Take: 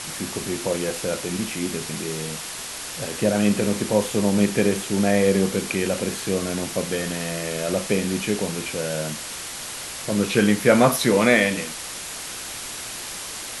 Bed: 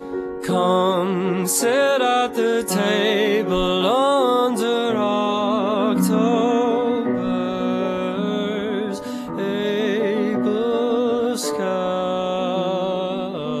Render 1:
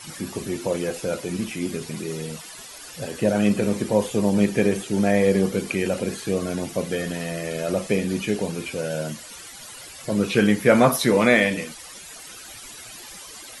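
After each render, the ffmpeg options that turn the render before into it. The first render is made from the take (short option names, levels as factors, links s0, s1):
-af "afftdn=nr=14:nf=-34"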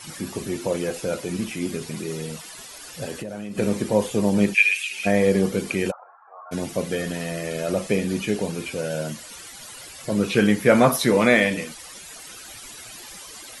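-filter_complex "[0:a]asettb=1/sr,asplit=3[s0][s1][s2];[s0]atrim=end=3.174[s3];[s1]atrim=start=3.17:end=3.58,asetpts=PTS-STARTPTS,afade=t=in:d=0.004:c=qsin,afade=t=out:st=0.406:d=0.004:c=qsin,acompressor=threshold=0.0398:ratio=16:attack=3.2:release=140:knee=1:detection=peak[s4];[s2]atrim=start=3.576[s5];[s3][s4]acrossfade=d=0.004:c1=hsin:c2=qsin[s6];[s6][s5]acrossfade=d=0.004:c1=qsin:c2=hsin,asplit=3[s7][s8][s9];[s7]afade=t=out:st=4.53:d=0.02[s10];[s8]highpass=f=2500:t=q:w=13,afade=t=in:st=4.53:d=0.02,afade=t=out:st=5.05:d=0.02[s11];[s9]afade=t=in:st=5.05:d=0.02[s12];[s10][s11][s12]amix=inputs=3:normalize=0,asplit=3[s13][s14][s15];[s13]afade=t=out:st=5.9:d=0.02[s16];[s14]asuperpass=centerf=990:order=8:qfactor=1.6,afade=t=in:st=5.9:d=0.02,afade=t=out:st=6.51:d=0.02[s17];[s15]afade=t=in:st=6.51:d=0.02[s18];[s16][s17][s18]amix=inputs=3:normalize=0"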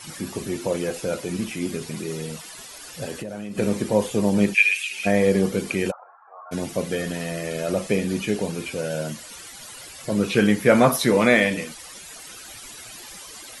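-af anull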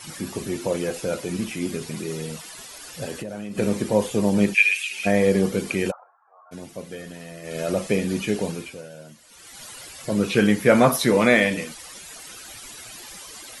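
-filter_complex "[0:a]asplit=5[s0][s1][s2][s3][s4];[s0]atrim=end=6.11,asetpts=PTS-STARTPTS,afade=t=out:st=5.92:d=0.19:silence=0.316228[s5];[s1]atrim=start=6.11:end=7.42,asetpts=PTS-STARTPTS,volume=0.316[s6];[s2]atrim=start=7.42:end=8.97,asetpts=PTS-STARTPTS,afade=t=in:d=0.19:silence=0.316228,afade=t=out:st=1.08:d=0.47:c=qua:silence=0.188365[s7];[s3]atrim=start=8.97:end=9.13,asetpts=PTS-STARTPTS,volume=0.188[s8];[s4]atrim=start=9.13,asetpts=PTS-STARTPTS,afade=t=in:d=0.47:c=qua:silence=0.188365[s9];[s5][s6][s7][s8][s9]concat=n=5:v=0:a=1"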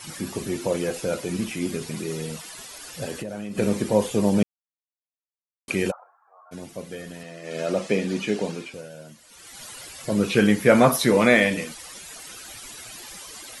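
-filter_complex "[0:a]asettb=1/sr,asplit=3[s0][s1][s2];[s0]atrim=end=7.234[s3];[s1]atrim=start=7.23:end=8.74,asetpts=PTS-STARTPTS,afade=t=in:d=0.004:c=qsin,afade=t=out:st=1.506:d=0.004:c=qsin,highpass=170,lowpass=6900[s4];[s2]atrim=start=8.736[s5];[s3][s4]acrossfade=d=0.004:c1=hsin:c2=qsin[s6];[s6][s5]acrossfade=d=0.004:c1=qsin:c2=hsin,asplit=3[s7][s8][s9];[s7]atrim=end=4.43,asetpts=PTS-STARTPTS,afade=t=out:st=4.426:d=0.004:c=hsin[s10];[s8]atrim=start=4.43:end=5.68,asetpts=PTS-STARTPTS,volume=0[s11];[s9]atrim=start=5.68,asetpts=PTS-STARTPTS,afade=t=in:d=0.004:c=hsin[s12];[s10][s11][s12]concat=n=3:v=0:a=1"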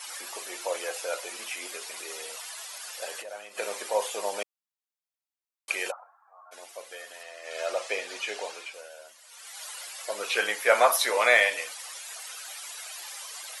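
-af "highpass=f=610:w=0.5412,highpass=f=610:w=1.3066"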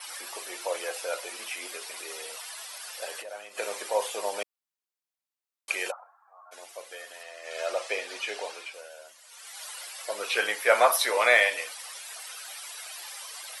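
-af "highpass=210,adynamicequalizer=threshold=0.001:dfrequency=6800:dqfactor=6.3:tfrequency=6800:tqfactor=6.3:attack=5:release=100:ratio=0.375:range=3:mode=cutabove:tftype=bell"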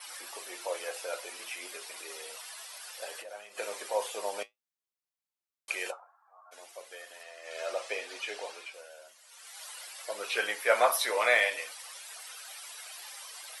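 -af "flanger=delay=4.7:depth=5.6:regen=-66:speed=0.58:shape=triangular"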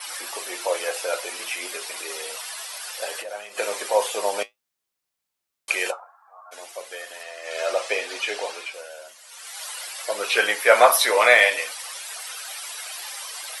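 -af "volume=3.35,alimiter=limit=0.794:level=0:latency=1"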